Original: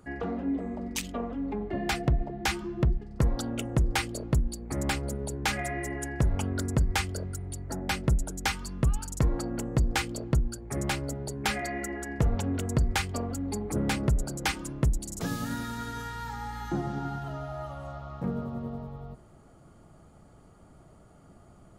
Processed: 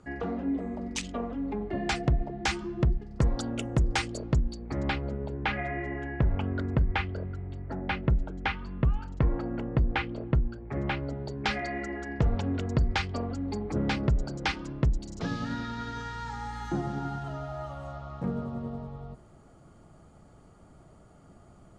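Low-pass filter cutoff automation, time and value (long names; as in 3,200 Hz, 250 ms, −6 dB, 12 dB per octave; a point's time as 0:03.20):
low-pass filter 24 dB per octave
0:04.10 7,800 Hz
0:05.18 3,100 Hz
0:10.90 3,100 Hz
0:11.42 5,100 Hz
0:15.76 5,100 Hz
0:16.66 9,400 Hz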